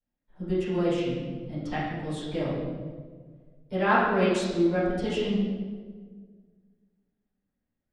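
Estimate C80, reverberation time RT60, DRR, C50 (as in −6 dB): 1.5 dB, 1.6 s, −13.5 dB, −1.5 dB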